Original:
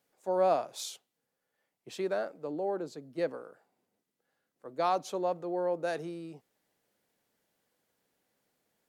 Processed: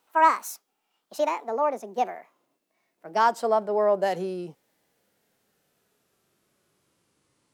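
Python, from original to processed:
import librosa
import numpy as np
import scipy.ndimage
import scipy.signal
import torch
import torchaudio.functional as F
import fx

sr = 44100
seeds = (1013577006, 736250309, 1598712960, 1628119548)

y = fx.speed_glide(x, sr, from_pct=176, to_pct=60)
y = fx.hpss(y, sr, part='harmonic', gain_db=7)
y = y * 10.0 ** (2.5 / 20.0)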